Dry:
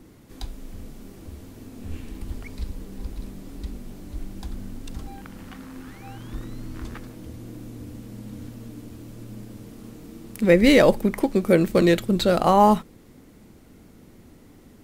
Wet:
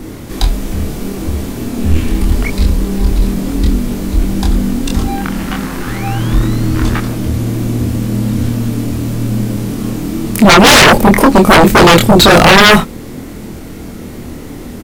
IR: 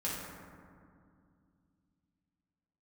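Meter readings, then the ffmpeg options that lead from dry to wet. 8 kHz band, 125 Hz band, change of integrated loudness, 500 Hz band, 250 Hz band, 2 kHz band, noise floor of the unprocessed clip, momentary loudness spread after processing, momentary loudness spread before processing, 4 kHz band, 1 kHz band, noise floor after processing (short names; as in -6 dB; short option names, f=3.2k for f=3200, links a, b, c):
+23.0 dB, +18.0 dB, +7.5 dB, +10.0 dB, +13.0 dB, +20.0 dB, -50 dBFS, 23 LU, 22 LU, +21.5 dB, +14.0 dB, -28 dBFS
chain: -filter_complex "[0:a]asplit=2[a][b];[b]adelay=25,volume=-3dB[c];[a][c]amix=inputs=2:normalize=0,aeval=exprs='0.891*sin(PI/2*7.08*val(0)/0.891)':c=same"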